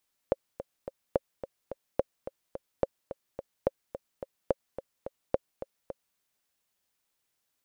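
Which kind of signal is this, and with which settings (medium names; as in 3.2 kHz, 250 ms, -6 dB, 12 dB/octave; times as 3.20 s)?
metronome 215 bpm, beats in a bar 3, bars 7, 542 Hz, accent 12.5 dB -10.5 dBFS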